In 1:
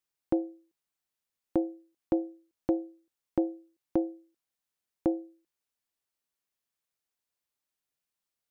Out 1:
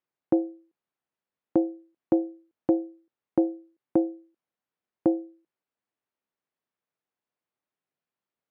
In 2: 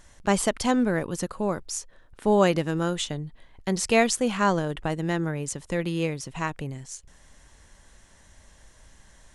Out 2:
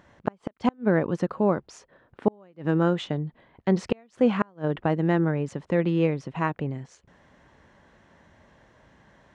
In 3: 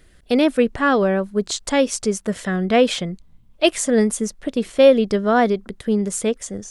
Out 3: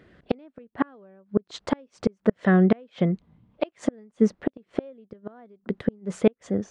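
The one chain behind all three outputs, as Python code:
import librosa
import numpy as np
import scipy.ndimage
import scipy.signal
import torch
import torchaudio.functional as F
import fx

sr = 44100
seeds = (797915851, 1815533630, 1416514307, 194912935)

y = scipy.signal.sosfilt(scipy.signal.butter(2, 130.0, 'highpass', fs=sr, output='sos'), x)
y = fx.high_shelf(y, sr, hz=4800.0, db=-10.0)
y = fx.gate_flip(y, sr, shuts_db=-13.0, range_db=-37)
y = fx.spacing_loss(y, sr, db_at_10k=25)
y = y * 10.0 ** (6.0 / 20.0)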